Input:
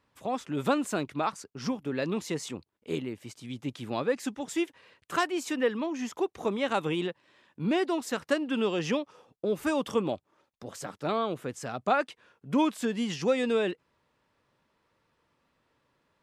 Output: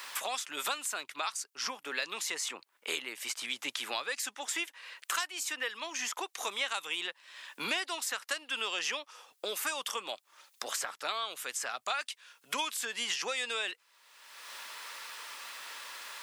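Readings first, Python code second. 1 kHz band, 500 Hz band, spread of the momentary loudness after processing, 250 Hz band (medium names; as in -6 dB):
-5.0 dB, -13.5 dB, 10 LU, -21.5 dB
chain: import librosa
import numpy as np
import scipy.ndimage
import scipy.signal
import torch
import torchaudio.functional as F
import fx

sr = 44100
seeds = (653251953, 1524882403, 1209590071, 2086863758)

y = scipy.signal.sosfilt(scipy.signal.butter(2, 1200.0, 'highpass', fs=sr, output='sos'), x)
y = fx.high_shelf(y, sr, hz=4100.0, db=10.5)
y = fx.band_squash(y, sr, depth_pct=100)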